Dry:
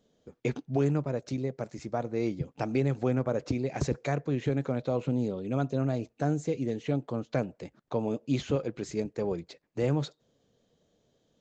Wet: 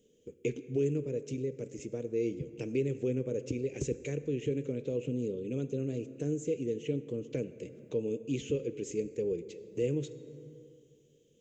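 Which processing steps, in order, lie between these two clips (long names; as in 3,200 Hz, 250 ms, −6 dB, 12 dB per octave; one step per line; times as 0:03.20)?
drawn EQ curve 220 Hz 0 dB, 470 Hz +8 dB, 700 Hz −19 dB, 1,300 Hz −17 dB, 2,800 Hz +7 dB, 4,300 Hz −8 dB, 6,700 Hz +8 dB, 10,000 Hz +6 dB
dense smooth reverb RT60 2.1 s, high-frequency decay 0.5×, DRR 13 dB
in parallel at +3 dB: downward compressor, threshold −42 dBFS, peak gain reduction 21.5 dB
on the sum: level −8.5 dB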